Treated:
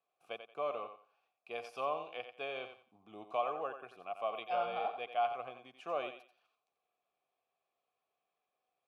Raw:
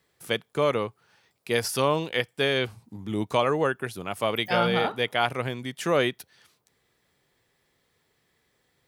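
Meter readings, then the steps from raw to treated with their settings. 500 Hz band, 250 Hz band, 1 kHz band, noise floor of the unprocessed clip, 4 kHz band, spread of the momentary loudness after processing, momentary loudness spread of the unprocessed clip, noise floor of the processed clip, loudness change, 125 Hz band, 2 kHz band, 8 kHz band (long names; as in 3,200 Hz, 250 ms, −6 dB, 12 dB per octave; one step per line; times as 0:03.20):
−13.5 dB, −24.5 dB, −8.0 dB, −72 dBFS, −20.5 dB, 13 LU, 9 LU, below −85 dBFS, −13.0 dB, −31.5 dB, −18.0 dB, below −30 dB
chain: formant filter a
feedback echo with a high-pass in the loop 89 ms, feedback 25%, high-pass 280 Hz, level −8.5 dB
level −3 dB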